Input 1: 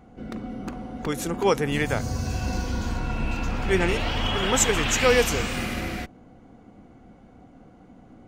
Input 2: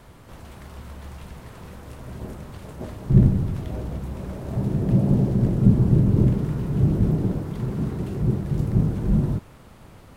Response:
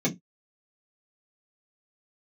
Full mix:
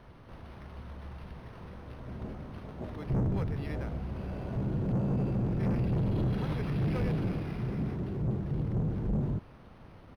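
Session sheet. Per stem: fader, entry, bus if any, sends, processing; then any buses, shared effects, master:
-16.5 dB, 1.90 s, no send, notch 3000 Hz
-5.0 dB, 0.00 s, no send, dry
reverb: off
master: soft clip -25.5 dBFS, distortion -7 dB; decimation joined by straight lines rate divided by 6×

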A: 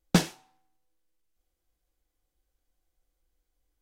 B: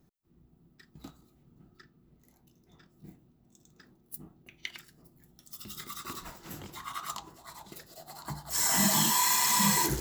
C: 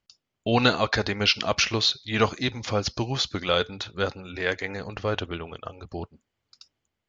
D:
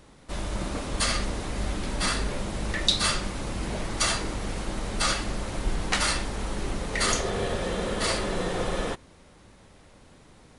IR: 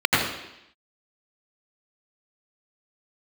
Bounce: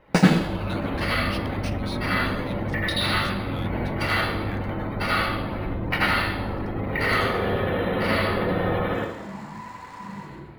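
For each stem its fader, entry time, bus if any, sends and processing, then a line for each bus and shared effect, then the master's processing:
+1.0 dB, 0.00 s, send -14.5 dB, dry
-13.5 dB, 0.40 s, send -17 dB, median filter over 15 samples
-13.5 dB, 0.05 s, no send, steep high-pass 1300 Hz; soft clip -14 dBFS, distortion -17 dB
-5.0 dB, 0.00 s, send -11 dB, spectral gate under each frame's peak -25 dB strong; LPF 4300 Hz 24 dB/oct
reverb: on, RT60 0.85 s, pre-delay 79 ms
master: decimation joined by straight lines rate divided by 3×

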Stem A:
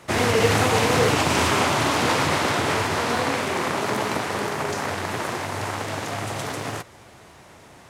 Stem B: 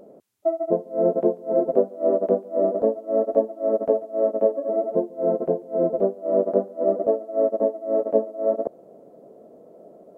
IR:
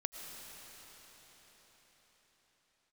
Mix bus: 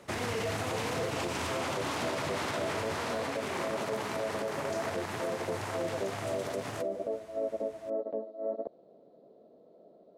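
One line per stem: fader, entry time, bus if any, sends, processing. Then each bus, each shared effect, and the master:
-9.0 dB, 0.00 s, no send, dry
+1.0 dB, 0.00 s, no send, ladder low-pass 4400 Hz, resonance 70%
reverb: off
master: limiter -24.5 dBFS, peak gain reduction 11 dB

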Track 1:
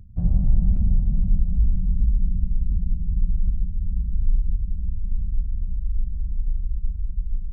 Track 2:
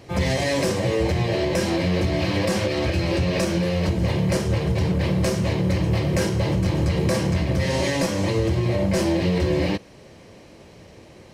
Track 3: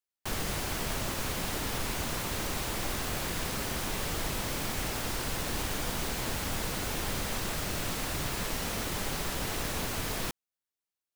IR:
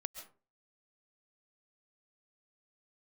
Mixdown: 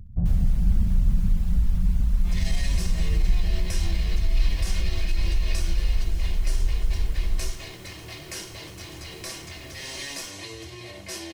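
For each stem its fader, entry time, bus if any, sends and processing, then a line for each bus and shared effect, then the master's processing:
+2.0 dB, 0.00 s, bus A, no send, echo send -13.5 dB, dry
-12.5 dB, 2.15 s, bus A, no send, no echo send, tilt shelf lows -9.5 dB, about 1400 Hz; comb 2.8 ms, depth 51%
-14.5 dB, 0.00 s, no bus, no send, no echo send, reverb removal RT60 0.63 s
bus A: 0.0 dB, limiter -14.5 dBFS, peak gain reduction 8.5 dB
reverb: off
echo: feedback echo 66 ms, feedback 51%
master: dry

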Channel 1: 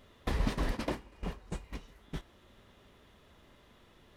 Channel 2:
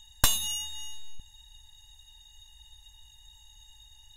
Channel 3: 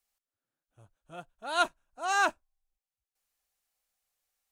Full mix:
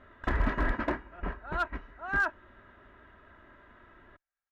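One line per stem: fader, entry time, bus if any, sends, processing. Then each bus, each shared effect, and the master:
+1.5 dB, 0.00 s, no send, dry
-15.0 dB, 0.00 s, no send, compressor 2:1, threshold -36 dBFS, peak gain reduction 11.5 dB
-11.0 dB, 0.00 s, no send, dry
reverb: off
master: synth low-pass 1600 Hz, resonance Q 3.5; one-sided clip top -23 dBFS; comb 3.1 ms, depth 43%

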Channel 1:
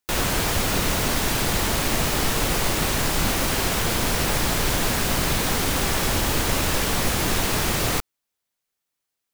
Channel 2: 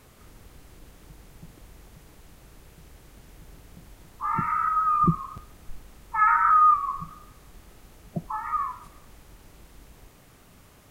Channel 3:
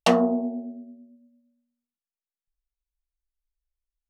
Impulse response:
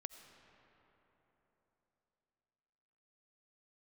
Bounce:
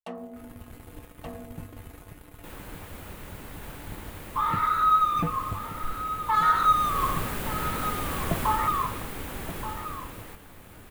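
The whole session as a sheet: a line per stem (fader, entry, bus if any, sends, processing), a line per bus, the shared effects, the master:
6.32 s -23 dB -> 7.01 s -11.5 dB -> 8.43 s -11.5 dB -> 9.08 s -24 dB, 2.35 s, no send, echo send -5.5 dB, notch 690 Hz, Q 13
+2.5 dB, 0.15 s, no send, echo send -11.5 dB, sample leveller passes 3; compressor, threshold -20 dBFS, peak gain reduction 7.5 dB; resonator 97 Hz, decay 0.22 s, harmonics odd, mix 80%
-19.5 dB, 0.00 s, no send, echo send -5.5 dB, dry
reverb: off
echo: echo 1.177 s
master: bell 5500 Hz -12 dB 1.2 oct; AGC gain up to 3.5 dB

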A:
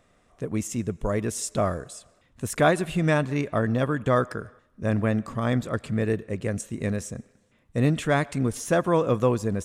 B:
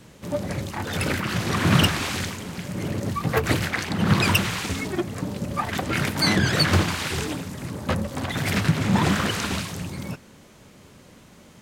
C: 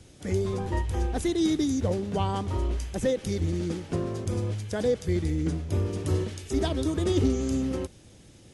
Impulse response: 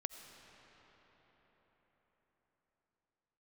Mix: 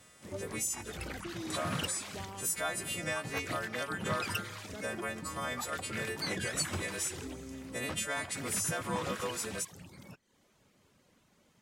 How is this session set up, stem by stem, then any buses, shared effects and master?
+1.0 dB, 0.00 s, muted 0.96–1.5, bus A, send -21.5 dB, frequency quantiser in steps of 2 st; HPF 830 Hz 6 dB/oct; high shelf 11000 Hz +7.5 dB
-15.0 dB, 0.00 s, no bus, no send, reverb removal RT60 0.58 s
-15.5 dB, 0.00 s, bus A, no send, dry
bus A: 0.0 dB, compressor 6:1, threshold -35 dBFS, peak gain reduction 17.5 dB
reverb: on, RT60 5.3 s, pre-delay 45 ms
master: low shelf 330 Hz -4 dB

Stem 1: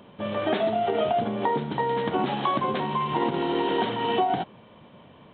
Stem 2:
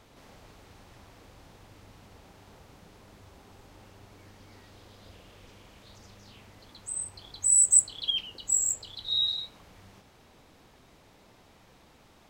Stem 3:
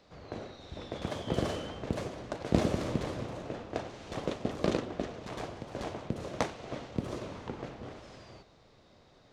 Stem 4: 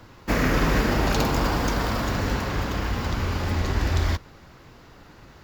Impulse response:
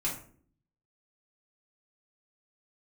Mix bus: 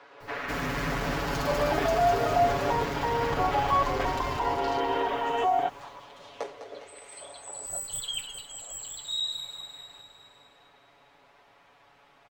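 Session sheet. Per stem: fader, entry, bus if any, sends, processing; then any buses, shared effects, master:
+2.0 dB, 1.25 s, bus A, no send, no echo send, tilt shelf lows +4.5 dB
+1.5 dB, 0.00 s, bus A, no send, echo send -17 dB, one-sided clip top -26 dBFS
-11.0 dB, 0.00 s, no bus, no send, echo send -10 dB, stepped high-pass 2.5 Hz 460–6800 Hz
-2.0 dB, 0.00 s, bus A, no send, echo send -4 dB, soft clip -26.5 dBFS, distortion -8 dB; requantised 10-bit, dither none
bus A: 0.0 dB, BPF 650–2600 Hz; limiter -20 dBFS, peak gain reduction 8 dB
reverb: off
echo: feedback echo 0.204 s, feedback 58%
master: comb 7.1 ms, depth 83%

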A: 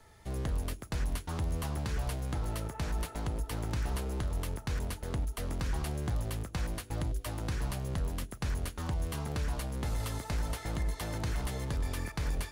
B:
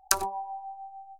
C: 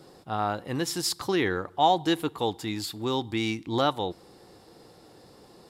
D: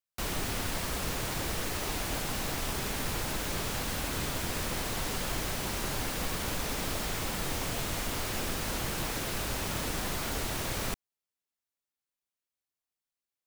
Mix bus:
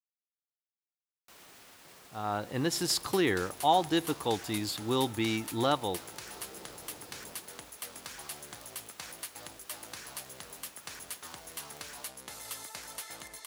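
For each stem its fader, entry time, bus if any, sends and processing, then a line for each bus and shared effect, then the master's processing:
-5.0 dB, 2.45 s, no send, HPF 380 Hz 6 dB/oct; tilt +3 dB/oct
off
-11.5 dB, 1.85 s, no send, AGC gain up to 11.5 dB
-14.0 dB, 1.10 s, no send, HPF 540 Hz 6 dB/oct; limiter -31.5 dBFS, peak gain reduction 8 dB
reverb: off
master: dry

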